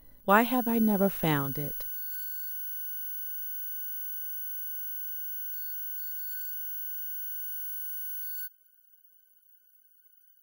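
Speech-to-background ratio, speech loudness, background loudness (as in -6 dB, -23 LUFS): 6.5 dB, -26.5 LUFS, -33.0 LUFS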